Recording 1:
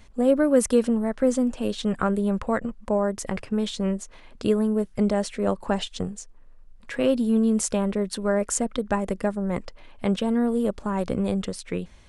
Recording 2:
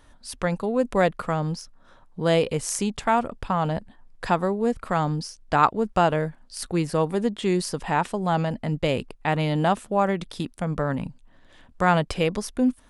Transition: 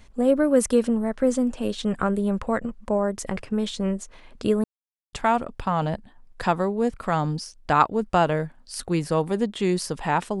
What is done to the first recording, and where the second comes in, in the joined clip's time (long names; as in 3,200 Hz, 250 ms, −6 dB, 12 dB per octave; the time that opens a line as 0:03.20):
recording 1
0:04.64–0:05.13: silence
0:05.13: continue with recording 2 from 0:02.96